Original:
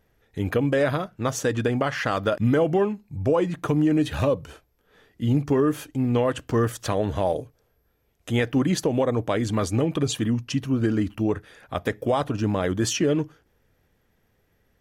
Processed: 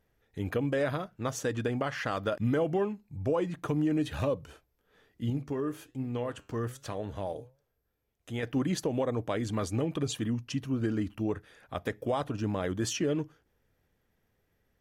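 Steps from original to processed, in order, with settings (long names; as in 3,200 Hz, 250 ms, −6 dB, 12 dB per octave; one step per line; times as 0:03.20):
0:05.30–0:08.43: flanger 1.3 Hz, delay 6.9 ms, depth 3.4 ms, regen +86%
level −7.5 dB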